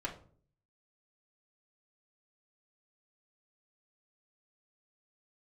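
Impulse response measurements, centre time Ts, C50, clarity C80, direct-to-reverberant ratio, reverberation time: 15 ms, 11.0 dB, 15.5 dB, −6.5 dB, 0.50 s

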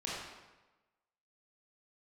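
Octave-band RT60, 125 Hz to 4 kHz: 1.1, 1.1, 1.1, 1.1, 1.0, 0.85 seconds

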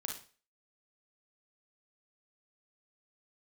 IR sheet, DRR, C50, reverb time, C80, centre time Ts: 0.5 dB, 4.5 dB, 0.40 s, 12.0 dB, 28 ms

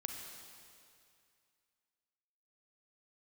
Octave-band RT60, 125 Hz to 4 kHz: 2.4, 2.3, 2.3, 2.4, 2.4, 2.3 seconds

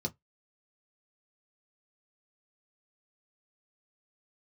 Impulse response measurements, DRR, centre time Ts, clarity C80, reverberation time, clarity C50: 1.0 dB, 6 ms, 40.5 dB, non-exponential decay, 28.0 dB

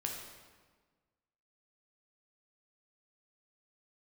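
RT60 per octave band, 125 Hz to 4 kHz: 1.6, 1.7, 1.5, 1.4, 1.2, 1.1 seconds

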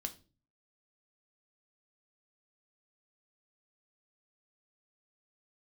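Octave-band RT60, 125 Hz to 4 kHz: 0.65, 0.55, 0.40, 0.30, 0.30, 0.30 seconds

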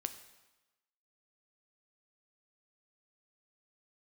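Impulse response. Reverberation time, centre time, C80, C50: 1.1 s, 10 ms, 13.5 dB, 11.5 dB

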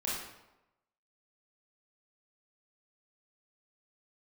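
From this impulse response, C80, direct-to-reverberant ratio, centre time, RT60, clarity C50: 4.0 dB, −7.0 dB, 67 ms, 0.95 s, 0.0 dB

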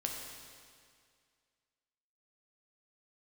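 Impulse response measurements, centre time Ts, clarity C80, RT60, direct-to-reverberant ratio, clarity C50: 78 ms, 3.5 dB, 2.1 s, 0.0 dB, 2.5 dB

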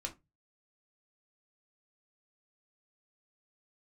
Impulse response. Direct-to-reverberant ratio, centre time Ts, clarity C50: 1.5 dB, 8 ms, 16.0 dB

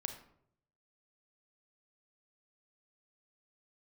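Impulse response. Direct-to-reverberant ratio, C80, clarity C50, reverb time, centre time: 6.5 dB, 12.0 dB, 9.0 dB, 0.70 s, 14 ms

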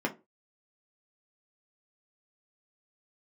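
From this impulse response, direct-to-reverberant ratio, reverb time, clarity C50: 0.0 dB, 0.25 s, 16.0 dB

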